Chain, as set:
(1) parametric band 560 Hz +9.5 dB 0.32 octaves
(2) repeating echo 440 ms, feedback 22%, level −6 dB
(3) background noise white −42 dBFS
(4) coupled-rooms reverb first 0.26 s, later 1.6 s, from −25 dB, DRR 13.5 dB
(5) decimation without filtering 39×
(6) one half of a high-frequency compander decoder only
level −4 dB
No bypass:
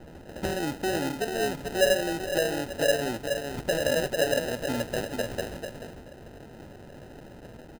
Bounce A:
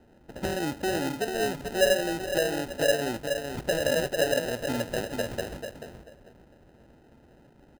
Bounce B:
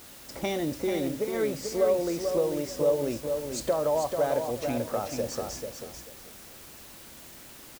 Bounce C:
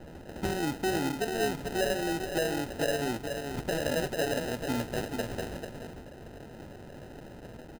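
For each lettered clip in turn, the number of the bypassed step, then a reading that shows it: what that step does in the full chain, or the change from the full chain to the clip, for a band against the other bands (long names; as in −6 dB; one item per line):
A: 3, change in momentary loudness spread −10 LU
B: 5, 2 kHz band −10.0 dB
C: 1, 125 Hz band +4.0 dB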